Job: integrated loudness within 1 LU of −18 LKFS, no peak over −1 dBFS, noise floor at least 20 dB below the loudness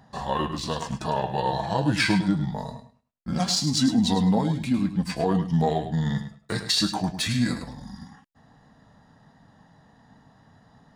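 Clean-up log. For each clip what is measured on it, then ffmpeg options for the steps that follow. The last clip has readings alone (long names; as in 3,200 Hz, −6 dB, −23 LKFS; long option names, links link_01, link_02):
integrated loudness −25.0 LKFS; sample peak −10.5 dBFS; target loudness −18.0 LKFS
→ -af "volume=7dB"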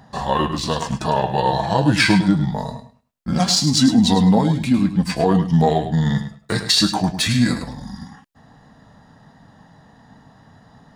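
integrated loudness −18.0 LKFS; sample peak −3.5 dBFS; background noise floor −53 dBFS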